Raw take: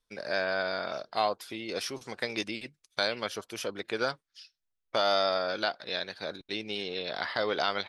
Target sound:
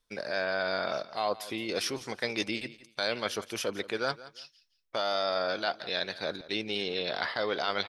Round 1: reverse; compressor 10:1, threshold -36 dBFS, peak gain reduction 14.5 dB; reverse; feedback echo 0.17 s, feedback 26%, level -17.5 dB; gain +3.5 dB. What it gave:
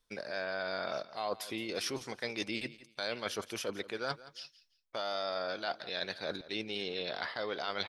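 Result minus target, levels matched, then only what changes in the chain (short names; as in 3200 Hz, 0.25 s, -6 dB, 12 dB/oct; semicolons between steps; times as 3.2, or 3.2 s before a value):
compressor: peak gain reduction +6.5 dB
change: compressor 10:1, threshold -29 dBFS, peak gain reduction 8 dB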